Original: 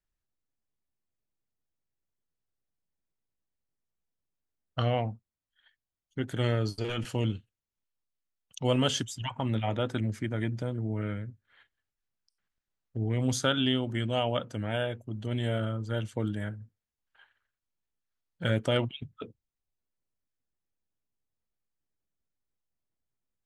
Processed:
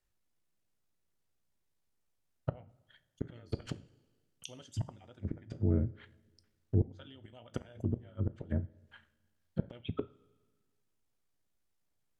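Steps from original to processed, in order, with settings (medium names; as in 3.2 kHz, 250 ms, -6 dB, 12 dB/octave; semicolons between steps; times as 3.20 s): inverted gate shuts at -22 dBFS, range -31 dB; low-pass that closes with the level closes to 510 Hz, closed at -35.5 dBFS; two-slope reverb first 0.71 s, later 3 s, from -16 dB, DRR 12 dB; granular stretch 0.52×, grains 35 ms; trim +6 dB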